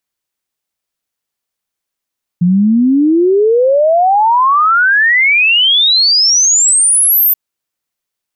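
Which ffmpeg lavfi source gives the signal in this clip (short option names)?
-f lavfi -i "aevalsrc='0.473*clip(min(t,4.93-t)/0.01,0,1)*sin(2*PI*170*4.93/log(14000/170)*(exp(log(14000/170)*t/4.93)-1))':d=4.93:s=44100"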